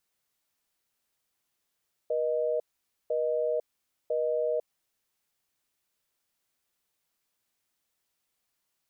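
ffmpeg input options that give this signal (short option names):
-f lavfi -i "aevalsrc='0.0398*(sin(2*PI*480*t)+sin(2*PI*620*t))*clip(min(mod(t,1),0.5-mod(t,1))/0.005,0,1)':d=2.92:s=44100"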